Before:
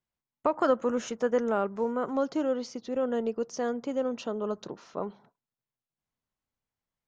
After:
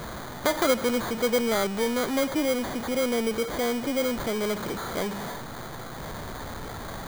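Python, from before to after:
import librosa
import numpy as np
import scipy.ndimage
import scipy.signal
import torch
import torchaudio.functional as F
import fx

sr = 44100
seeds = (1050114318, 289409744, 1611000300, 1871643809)

y = x + 0.5 * 10.0 ** (-28.0 / 20.0) * np.sign(x)
y = fx.sample_hold(y, sr, seeds[0], rate_hz=2700.0, jitter_pct=0)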